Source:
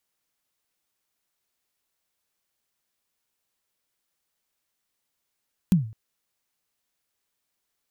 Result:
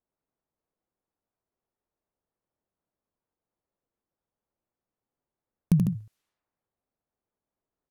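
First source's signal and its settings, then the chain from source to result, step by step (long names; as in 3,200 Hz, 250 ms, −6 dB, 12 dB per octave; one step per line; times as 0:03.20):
synth kick length 0.21 s, from 200 Hz, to 110 Hz, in 132 ms, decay 0.42 s, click on, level −11.5 dB
low-pass that shuts in the quiet parts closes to 750 Hz, open at −36 dBFS
loudspeakers that aren't time-aligned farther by 26 metres −5 dB, 50 metres −8 dB
pitch modulation by a square or saw wave saw up 4.2 Hz, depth 160 cents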